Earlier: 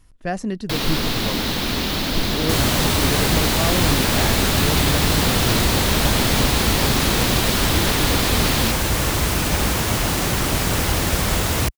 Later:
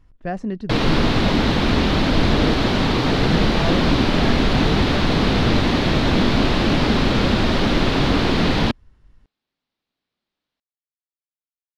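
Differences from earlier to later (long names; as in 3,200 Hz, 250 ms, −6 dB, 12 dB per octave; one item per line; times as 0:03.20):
first sound +7.5 dB
second sound: muted
master: add head-to-tape spacing loss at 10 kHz 24 dB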